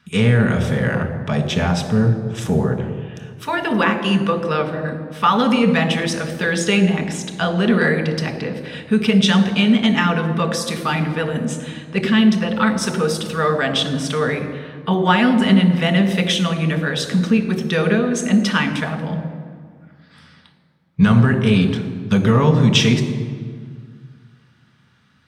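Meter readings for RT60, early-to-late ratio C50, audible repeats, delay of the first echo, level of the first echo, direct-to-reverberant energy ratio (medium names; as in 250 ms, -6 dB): 1.9 s, 9.0 dB, no echo, no echo, no echo, 4.5 dB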